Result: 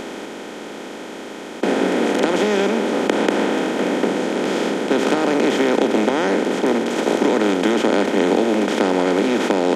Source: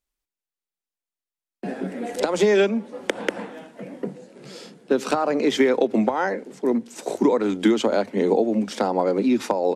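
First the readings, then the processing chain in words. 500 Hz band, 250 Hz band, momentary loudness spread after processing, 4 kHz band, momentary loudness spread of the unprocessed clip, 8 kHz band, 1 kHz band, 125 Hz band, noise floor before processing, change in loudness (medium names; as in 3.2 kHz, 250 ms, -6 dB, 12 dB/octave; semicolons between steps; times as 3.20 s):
+4.0 dB, +5.0 dB, 15 LU, +7.5 dB, 17 LU, +6.5 dB, +5.5 dB, +4.5 dB, under -85 dBFS, +4.0 dB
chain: spectral levelling over time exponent 0.2; trim -5.5 dB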